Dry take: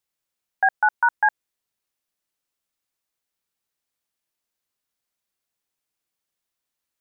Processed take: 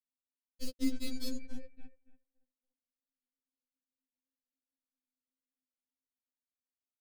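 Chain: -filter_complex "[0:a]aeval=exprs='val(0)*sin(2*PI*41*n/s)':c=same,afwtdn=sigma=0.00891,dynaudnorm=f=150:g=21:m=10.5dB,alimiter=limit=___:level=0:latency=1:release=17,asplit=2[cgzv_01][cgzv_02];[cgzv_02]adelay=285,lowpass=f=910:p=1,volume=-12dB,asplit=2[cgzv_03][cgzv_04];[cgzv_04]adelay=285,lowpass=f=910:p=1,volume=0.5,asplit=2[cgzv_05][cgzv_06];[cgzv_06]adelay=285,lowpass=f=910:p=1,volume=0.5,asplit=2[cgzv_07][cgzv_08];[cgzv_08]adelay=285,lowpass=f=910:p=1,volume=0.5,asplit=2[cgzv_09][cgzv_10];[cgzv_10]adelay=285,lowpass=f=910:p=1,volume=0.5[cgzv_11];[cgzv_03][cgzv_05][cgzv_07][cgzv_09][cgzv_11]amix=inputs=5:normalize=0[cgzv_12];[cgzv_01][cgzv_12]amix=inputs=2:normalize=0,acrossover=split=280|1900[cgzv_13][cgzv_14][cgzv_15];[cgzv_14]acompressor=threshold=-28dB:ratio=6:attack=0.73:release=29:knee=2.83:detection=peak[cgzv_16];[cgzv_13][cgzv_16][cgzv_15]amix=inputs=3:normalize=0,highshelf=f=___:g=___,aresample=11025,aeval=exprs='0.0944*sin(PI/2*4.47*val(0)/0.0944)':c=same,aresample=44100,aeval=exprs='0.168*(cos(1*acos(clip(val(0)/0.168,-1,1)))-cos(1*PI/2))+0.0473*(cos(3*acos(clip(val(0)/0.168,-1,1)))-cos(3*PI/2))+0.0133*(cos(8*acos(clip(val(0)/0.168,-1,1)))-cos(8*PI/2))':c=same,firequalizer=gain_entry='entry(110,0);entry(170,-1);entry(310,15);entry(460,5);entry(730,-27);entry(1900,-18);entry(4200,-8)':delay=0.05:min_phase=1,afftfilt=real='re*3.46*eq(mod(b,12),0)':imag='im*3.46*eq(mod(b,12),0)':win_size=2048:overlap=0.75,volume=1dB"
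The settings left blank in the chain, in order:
-15.5dB, 2k, -4.5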